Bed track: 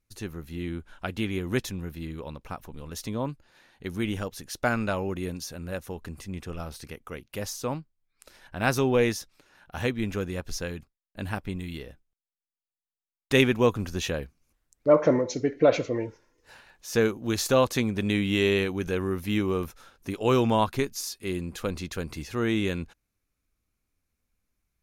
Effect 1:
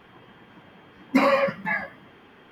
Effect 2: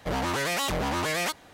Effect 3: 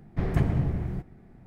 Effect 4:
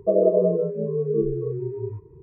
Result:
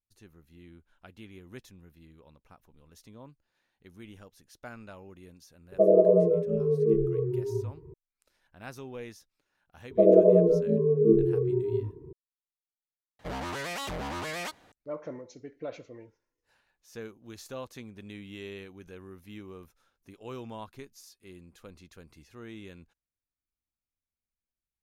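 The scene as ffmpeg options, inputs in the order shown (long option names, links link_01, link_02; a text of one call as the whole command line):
ffmpeg -i bed.wav -i cue0.wav -i cue1.wav -i cue2.wav -i cue3.wav -filter_complex "[4:a]asplit=2[link_01][link_02];[0:a]volume=-18.5dB[link_03];[link_02]equalizer=frequency=270:width_type=o:width=0.57:gain=14[link_04];[2:a]highshelf=frequency=6600:gain=-5[link_05];[link_03]asplit=2[link_06][link_07];[link_06]atrim=end=13.194[link_08];[link_05]atrim=end=1.53,asetpts=PTS-STARTPTS,volume=-7dB[link_09];[link_07]atrim=start=14.716[link_10];[link_01]atrim=end=2.22,asetpts=PTS-STARTPTS,volume=-1dB,afade=type=in:duration=0.004:curve=hsin,afade=type=out:start_time=2.216:duration=0.004:curve=hsin,adelay=5720[link_11];[link_04]atrim=end=2.22,asetpts=PTS-STARTPTS,volume=-1.5dB,afade=type=in:duration=0.004:curve=hsin,afade=type=out:start_time=2.216:duration=0.004:curve=hsin,adelay=9910[link_12];[link_08][link_09]acrossfade=duration=0.004:curve1=hsin:curve2=hsin[link_13];[link_13][link_10]acrossfade=duration=0.004:curve1=hsin:curve2=hsin[link_14];[link_14][link_11][link_12]amix=inputs=3:normalize=0" out.wav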